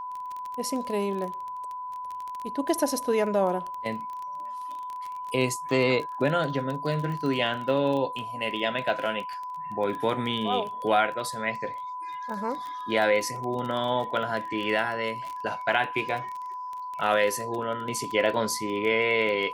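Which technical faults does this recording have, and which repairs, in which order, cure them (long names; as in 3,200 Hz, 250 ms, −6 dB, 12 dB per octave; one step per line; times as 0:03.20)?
surface crackle 20 per second −31 dBFS
whistle 1,000 Hz −33 dBFS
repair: click removal
notch filter 1,000 Hz, Q 30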